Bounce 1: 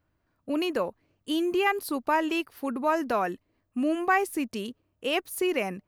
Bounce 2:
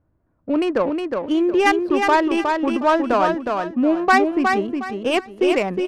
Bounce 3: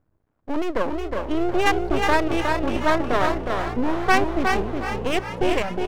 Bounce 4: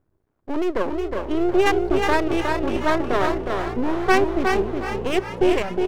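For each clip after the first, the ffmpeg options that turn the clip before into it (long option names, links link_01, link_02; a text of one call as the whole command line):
ffmpeg -i in.wav -filter_complex "[0:a]adynamicsmooth=sensitivity=2:basefreq=1000,asplit=2[link_01][link_02];[link_02]aecho=0:1:363|726|1089|1452:0.596|0.167|0.0467|0.0131[link_03];[link_01][link_03]amix=inputs=2:normalize=0,volume=8.5dB" out.wav
ffmpeg -i in.wav -filter_complex "[0:a]aeval=exprs='max(val(0),0)':channel_layout=same,asplit=8[link_01][link_02][link_03][link_04][link_05][link_06][link_07][link_08];[link_02]adelay=391,afreqshift=59,volume=-11dB[link_09];[link_03]adelay=782,afreqshift=118,volume=-15.2dB[link_10];[link_04]adelay=1173,afreqshift=177,volume=-19.3dB[link_11];[link_05]adelay=1564,afreqshift=236,volume=-23.5dB[link_12];[link_06]adelay=1955,afreqshift=295,volume=-27.6dB[link_13];[link_07]adelay=2346,afreqshift=354,volume=-31.8dB[link_14];[link_08]adelay=2737,afreqshift=413,volume=-35.9dB[link_15];[link_01][link_09][link_10][link_11][link_12][link_13][link_14][link_15]amix=inputs=8:normalize=0" out.wav
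ffmpeg -i in.wav -af "equalizer=frequency=380:width_type=o:width=0.27:gain=8,volume=-1dB" out.wav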